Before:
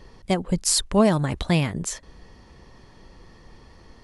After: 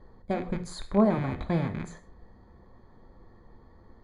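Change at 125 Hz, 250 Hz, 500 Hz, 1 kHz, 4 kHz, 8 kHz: −6.5, −4.5, −5.0, −5.0, −19.0, −25.0 decibels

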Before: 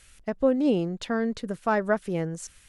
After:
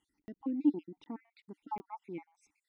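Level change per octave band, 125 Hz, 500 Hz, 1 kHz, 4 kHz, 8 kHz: −22.0 dB, −22.5 dB, −12.0 dB, below −20 dB, below −30 dB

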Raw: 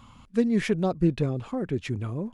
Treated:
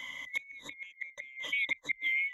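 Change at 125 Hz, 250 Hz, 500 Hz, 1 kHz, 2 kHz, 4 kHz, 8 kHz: below −35 dB, −34.5 dB, −29.0 dB, −17.5 dB, +9.0 dB, +2.0 dB, −6.0 dB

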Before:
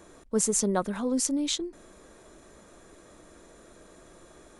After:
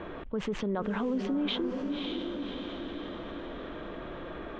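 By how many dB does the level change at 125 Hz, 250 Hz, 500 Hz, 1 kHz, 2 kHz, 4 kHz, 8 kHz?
−1.0 dB, −0.5 dB, −1.5 dB, −1.5 dB, +3.5 dB, −1.0 dB, below −30 dB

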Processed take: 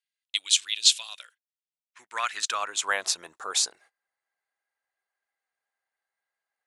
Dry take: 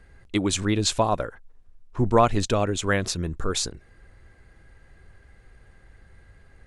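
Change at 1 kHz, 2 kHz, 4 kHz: −7.5, 0.0, +6.0 decibels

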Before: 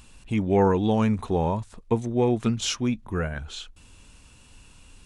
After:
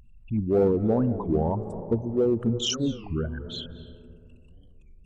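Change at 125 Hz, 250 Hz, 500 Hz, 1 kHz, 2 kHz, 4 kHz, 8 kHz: −1.5, −1.0, 0.0, −7.5, −10.5, +1.0, −1.5 decibels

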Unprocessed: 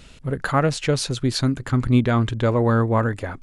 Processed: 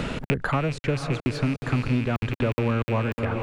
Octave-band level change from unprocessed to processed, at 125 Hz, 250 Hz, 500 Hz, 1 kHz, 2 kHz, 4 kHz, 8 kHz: −4.5, −5.0, −5.0, −5.5, −1.5, −8.0, −13.0 decibels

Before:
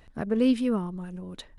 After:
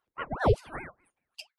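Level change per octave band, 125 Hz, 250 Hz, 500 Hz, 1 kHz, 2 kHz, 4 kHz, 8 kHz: +4.0 dB, −15.0 dB, −0.5 dB, +7.0 dB, +5.5 dB, −4.5 dB, can't be measured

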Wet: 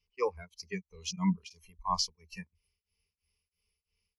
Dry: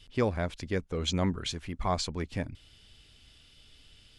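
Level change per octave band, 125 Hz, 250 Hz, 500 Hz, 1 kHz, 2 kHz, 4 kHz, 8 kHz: −7.0, −2.5, −5.5, −0.5, −7.0, −2.5, +0.5 decibels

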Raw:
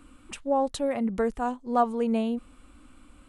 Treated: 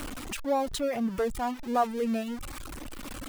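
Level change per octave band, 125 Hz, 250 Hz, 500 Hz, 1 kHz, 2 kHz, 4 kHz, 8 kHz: can't be measured, −3.0 dB, −2.5 dB, −2.0 dB, +1.5 dB, +3.5 dB, +4.5 dB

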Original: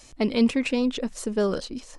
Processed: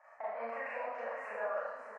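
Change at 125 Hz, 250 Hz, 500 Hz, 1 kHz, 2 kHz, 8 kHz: can't be measured, −37.5 dB, −11.5 dB, −0.5 dB, −6.5 dB, below −30 dB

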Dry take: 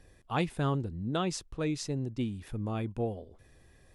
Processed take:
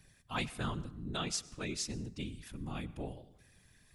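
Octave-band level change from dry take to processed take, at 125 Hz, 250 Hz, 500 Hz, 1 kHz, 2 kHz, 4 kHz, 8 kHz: −8.5, −8.0, −10.5, −6.5, −1.0, +1.5, +2.5 decibels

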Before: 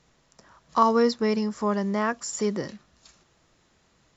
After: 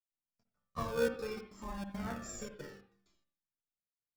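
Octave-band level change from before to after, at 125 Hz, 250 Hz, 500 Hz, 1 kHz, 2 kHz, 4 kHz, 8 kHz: −10.5 dB, −17.0 dB, −12.5 dB, −19.0 dB, −10.0 dB, −13.5 dB, can't be measured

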